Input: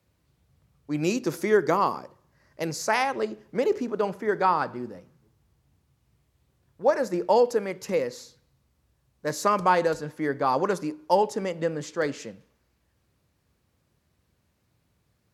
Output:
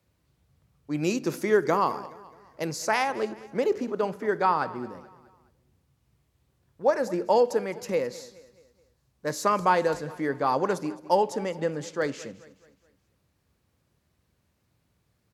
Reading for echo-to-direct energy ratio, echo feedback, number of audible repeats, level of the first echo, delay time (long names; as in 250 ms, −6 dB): −17.5 dB, 44%, 3, −18.5 dB, 212 ms